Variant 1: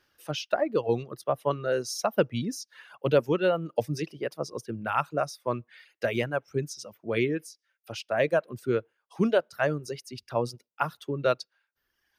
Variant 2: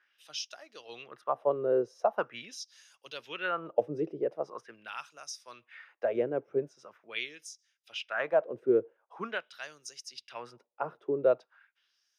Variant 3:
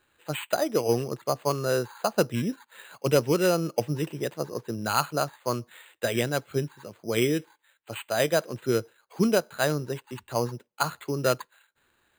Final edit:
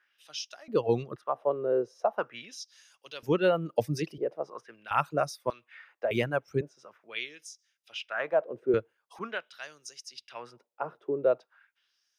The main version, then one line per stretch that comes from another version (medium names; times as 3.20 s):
2
0.68–1.16 s: from 1
3.23–4.18 s: from 1
4.91–5.50 s: from 1
6.11–6.61 s: from 1
8.74–9.19 s: from 1
not used: 3